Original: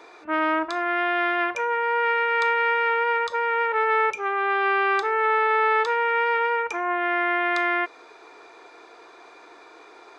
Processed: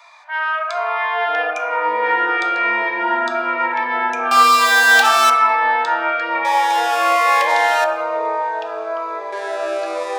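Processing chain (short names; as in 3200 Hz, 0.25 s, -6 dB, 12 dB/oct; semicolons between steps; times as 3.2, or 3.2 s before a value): 4.31–5.3 sample leveller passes 5; steep high-pass 630 Hz 72 dB/oct; on a send at -11 dB: bell 1100 Hz +10.5 dB 2.9 oct + reverb RT60 1.7 s, pre-delay 7 ms; on the sum: echoes that change speed 0.35 s, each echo -6 st, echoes 3, each echo -6 dB; cascading phaser falling 1.1 Hz; gain +4.5 dB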